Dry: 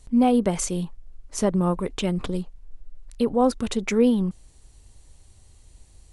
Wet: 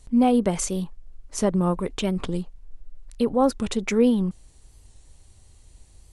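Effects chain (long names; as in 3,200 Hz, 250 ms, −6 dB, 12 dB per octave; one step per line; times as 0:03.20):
wow of a warped record 45 rpm, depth 100 cents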